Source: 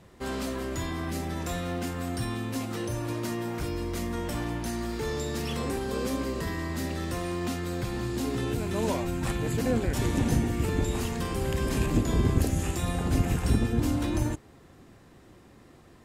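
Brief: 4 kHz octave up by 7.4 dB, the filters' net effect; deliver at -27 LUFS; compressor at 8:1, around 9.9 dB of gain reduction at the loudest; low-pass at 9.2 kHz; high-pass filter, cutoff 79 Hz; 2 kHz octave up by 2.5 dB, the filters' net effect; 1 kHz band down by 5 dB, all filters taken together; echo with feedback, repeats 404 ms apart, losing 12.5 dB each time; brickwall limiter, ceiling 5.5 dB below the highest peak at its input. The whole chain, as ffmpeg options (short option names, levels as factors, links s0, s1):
-af "highpass=79,lowpass=9200,equalizer=f=1000:t=o:g=-8,equalizer=f=2000:t=o:g=3,equalizer=f=4000:t=o:g=9,acompressor=threshold=0.0282:ratio=8,alimiter=level_in=1.41:limit=0.0631:level=0:latency=1,volume=0.708,aecho=1:1:404|808|1212:0.237|0.0569|0.0137,volume=2.82"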